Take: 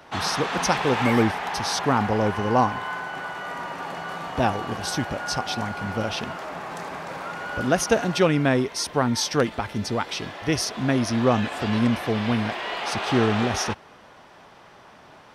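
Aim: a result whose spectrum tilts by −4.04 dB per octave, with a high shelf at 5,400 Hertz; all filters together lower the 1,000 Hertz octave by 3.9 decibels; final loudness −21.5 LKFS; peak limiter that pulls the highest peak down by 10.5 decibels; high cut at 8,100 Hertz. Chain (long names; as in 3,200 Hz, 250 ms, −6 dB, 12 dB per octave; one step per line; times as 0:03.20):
low-pass filter 8,100 Hz
parametric band 1,000 Hz −5.5 dB
high-shelf EQ 5,400 Hz +6.5 dB
level +7 dB
brickwall limiter −11.5 dBFS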